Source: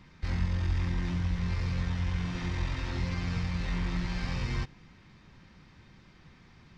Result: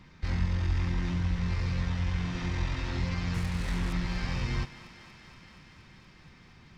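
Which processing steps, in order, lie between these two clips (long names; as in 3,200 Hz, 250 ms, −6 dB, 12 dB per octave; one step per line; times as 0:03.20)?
0:03.34–0:03.93: phase distortion by the signal itself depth 0.31 ms
on a send: feedback echo with a high-pass in the loop 236 ms, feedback 82%, high-pass 330 Hz, level −15 dB
on the sum: level +1 dB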